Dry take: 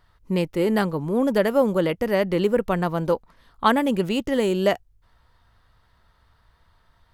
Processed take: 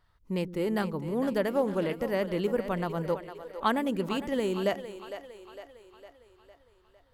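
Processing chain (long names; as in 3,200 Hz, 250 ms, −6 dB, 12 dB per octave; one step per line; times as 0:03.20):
on a send: echo with a time of its own for lows and highs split 350 Hz, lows 115 ms, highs 456 ms, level −11 dB
0:01.51–0:01.95: on the sum: highs frequency-modulated by the lows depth 0.13 ms
level −8 dB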